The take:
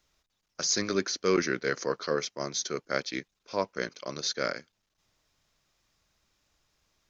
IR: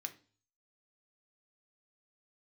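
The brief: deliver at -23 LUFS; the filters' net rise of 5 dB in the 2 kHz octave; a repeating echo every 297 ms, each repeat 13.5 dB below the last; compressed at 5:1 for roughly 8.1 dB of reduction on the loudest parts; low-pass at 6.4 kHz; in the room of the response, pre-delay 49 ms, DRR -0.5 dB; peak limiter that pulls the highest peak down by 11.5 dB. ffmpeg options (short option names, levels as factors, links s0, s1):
-filter_complex "[0:a]lowpass=6400,equalizer=f=2000:t=o:g=6.5,acompressor=threshold=0.0355:ratio=5,alimiter=level_in=1.33:limit=0.0631:level=0:latency=1,volume=0.75,aecho=1:1:297|594:0.211|0.0444,asplit=2[s0][s1];[1:a]atrim=start_sample=2205,adelay=49[s2];[s1][s2]afir=irnorm=-1:irlink=0,volume=1.41[s3];[s0][s3]amix=inputs=2:normalize=0,volume=4.22"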